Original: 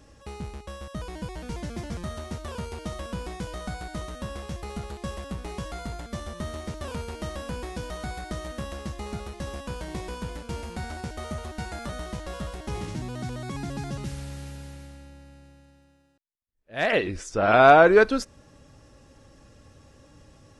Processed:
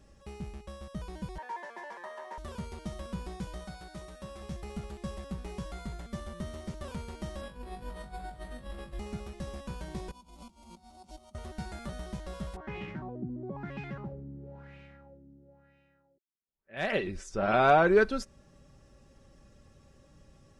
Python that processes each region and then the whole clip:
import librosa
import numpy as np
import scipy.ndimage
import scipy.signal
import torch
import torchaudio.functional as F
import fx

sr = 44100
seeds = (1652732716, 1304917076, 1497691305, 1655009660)

y = fx.chain(x, sr, fx.highpass(hz=440.0, slope=24),
    fx.high_shelf(hz=3000.0, db=-10.5),
    fx.small_body(hz=(960.0, 1700.0), ring_ms=20, db=18), at=(1.38, 2.38))
y = fx.chain(y, sr, fx.low_shelf(hz=250.0, db=-7.5),
    fx.notch_comb(f0_hz=240.0), at=(3.64, 4.41))
y = fx.chain(y, sr, fx.peak_eq(hz=6200.0, db=-13.5, octaves=0.51),
    fx.over_compress(threshold_db=-38.0, ratio=-0.5),
    fx.room_flutter(wall_m=3.5, rt60_s=0.25), at=(7.41, 8.99))
y = fx.chain(y, sr, fx.low_shelf(hz=190.0, db=-6.0),
    fx.over_compress(threshold_db=-43.0, ratio=-0.5),
    fx.fixed_phaser(hz=450.0, stages=6), at=(10.11, 11.35))
y = fx.chain(y, sr, fx.highpass(hz=150.0, slope=6),
    fx.filter_lfo_lowpass(shape='sine', hz=1.0, low_hz=290.0, high_hz=2600.0, q=3.4), at=(12.56, 16.77))
y = fx.low_shelf(y, sr, hz=240.0, db=5.5)
y = y + 0.41 * np.pad(y, (int(5.2 * sr / 1000.0), 0))[:len(y)]
y = y * librosa.db_to_amplitude(-8.5)